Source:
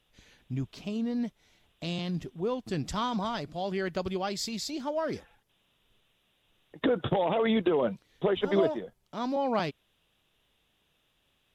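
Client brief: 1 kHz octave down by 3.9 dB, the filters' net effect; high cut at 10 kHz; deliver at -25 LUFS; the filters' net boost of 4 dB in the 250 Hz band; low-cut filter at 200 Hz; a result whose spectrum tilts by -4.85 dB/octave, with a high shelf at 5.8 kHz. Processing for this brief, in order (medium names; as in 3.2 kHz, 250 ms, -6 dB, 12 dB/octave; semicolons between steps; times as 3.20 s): high-pass 200 Hz; low-pass 10 kHz; peaking EQ 250 Hz +7.5 dB; peaking EQ 1 kHz -6 dB; treble shelf 5.8 kHz +7.5 dB; trim +4.5 dB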